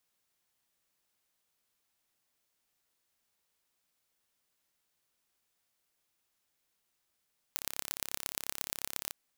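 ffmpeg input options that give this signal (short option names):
-f lavfi -i "aevalsrc='0.531*eq(mod(n,1289),0)*(0.5+0.5*eq(mod(n,5156),0))':d=1.57:s=44100"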